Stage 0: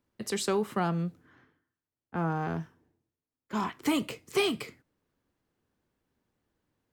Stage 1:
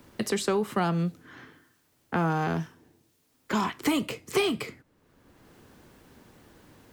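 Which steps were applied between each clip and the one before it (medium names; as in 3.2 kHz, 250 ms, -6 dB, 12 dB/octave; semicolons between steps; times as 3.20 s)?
three bands compressed up and down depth 70%; trim +4 dB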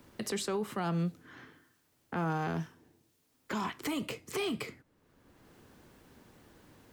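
peak limiter -21.5 dBFS, peak gain reduction 8.5 dB; trim -4 dB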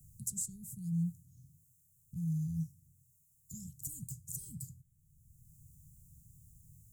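Chebyshev band-stop 150–7100 Hz, order 4; trim +6 dB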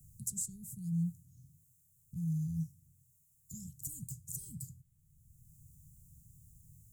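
peaking EQ 470 Hz +3 dB 0.38 oct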